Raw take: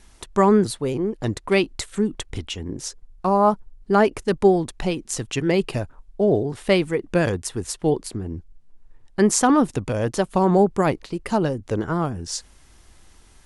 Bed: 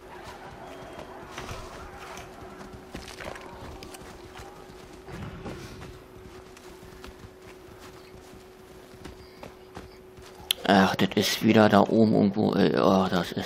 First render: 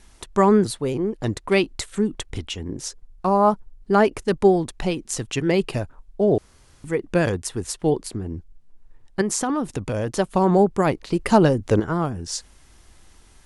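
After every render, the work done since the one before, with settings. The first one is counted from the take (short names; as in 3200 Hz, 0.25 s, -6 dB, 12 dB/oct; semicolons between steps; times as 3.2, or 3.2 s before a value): 6.38–6.84 room tone; 9.21–10.14 compressor 5:1, threshold -20 dBFS; 11.07–11.8 gain +6 dB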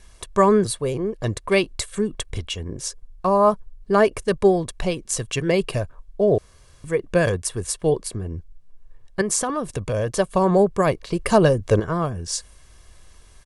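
dynamic EQ 9300 Hz, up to +5 dB, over -49 dBFS, Q 2.2; comb 1.8 ms, depth 48%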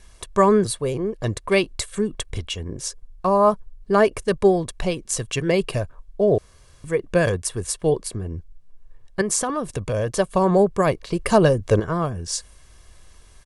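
nothing audible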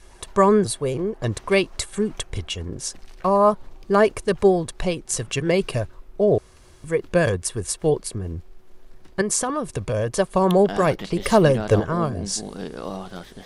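add bed -11 dB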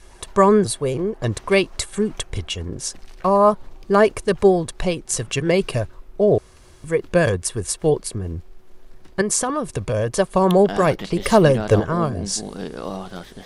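gain +2 dB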